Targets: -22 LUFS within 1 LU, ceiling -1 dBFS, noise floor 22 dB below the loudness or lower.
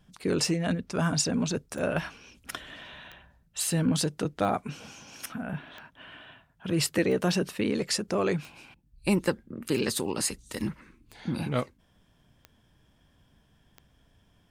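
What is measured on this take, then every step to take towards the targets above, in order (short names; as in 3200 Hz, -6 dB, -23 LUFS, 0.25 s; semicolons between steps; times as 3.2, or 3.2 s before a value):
clicks 11; loudness -29.5 LUFS; peak -11.5 dBFS; loudness target -22.0 LUFS
-> de-click; gain +7.5 dB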